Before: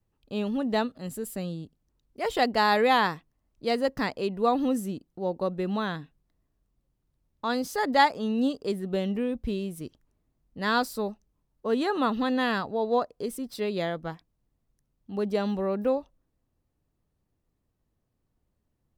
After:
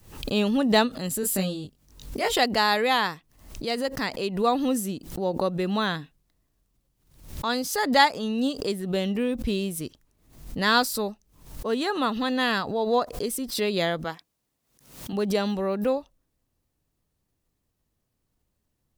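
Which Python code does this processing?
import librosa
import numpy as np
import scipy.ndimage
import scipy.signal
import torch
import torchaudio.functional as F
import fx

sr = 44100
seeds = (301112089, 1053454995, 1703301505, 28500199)

y = fx.doubler(x, sr, ms=21.0, db=-3, at=(1.21, 2.35))
y = fx.highpass(y, sr, hz=340.0, slope=6, at=(14.04, 15.13))
y = fx.rider(y, sr, range_db=10, speed_s=2.0)
y = fx.high_shelf(y, sr, hz=2200.0, db=9.0)
y = fx.pre_swell(y, sr, db_per_s=95.0)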